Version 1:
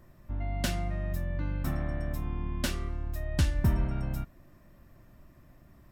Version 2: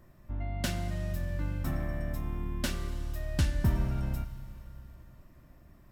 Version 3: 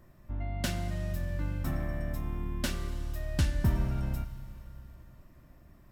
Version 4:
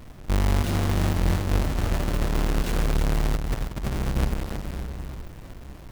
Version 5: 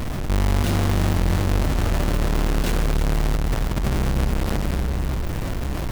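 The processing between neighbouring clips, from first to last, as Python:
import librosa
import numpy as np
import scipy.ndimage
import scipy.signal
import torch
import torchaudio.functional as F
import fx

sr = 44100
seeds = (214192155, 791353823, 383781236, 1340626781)

y1 = fx.rev_schroeder(x, sr, rt60_s=3.3, comb_ms=31, drr_db=10.5)
y1 = y1 * 10.0 ** (-1.5 / 20.0)
y2 = y1
y3 = fx.halfwave_hold(y2, sr)
y3 = fx.over_compress(y3, sr, threshold_db=-29.0, ratio=-0.5)
y3 = y3 + 10.0 ** (-7.0 / 20.0) * np.pad(y3, (int(321 * sr / 1000.0), 0))[:len(y3)]
y3 = y3 * 10.0 ** (6.5 / 20.0)
y4 = fx.env_flatten(y3, sr, amount_pct=70)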